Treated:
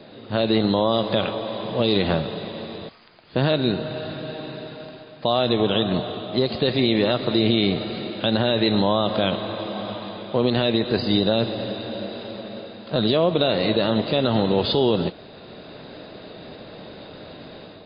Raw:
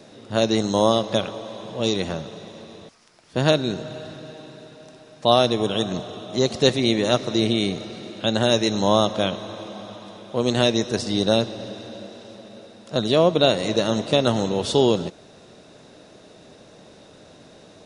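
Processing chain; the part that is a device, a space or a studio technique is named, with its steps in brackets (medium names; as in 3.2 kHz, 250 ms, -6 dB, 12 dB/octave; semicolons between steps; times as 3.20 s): low-bitrate web radio (level rider gain up to 5.5 dB; peak limiter -11 dBFS, peak gain reduction 9.5 dB; trim +3 dB; MP3 24 kbps 11.025 kHz)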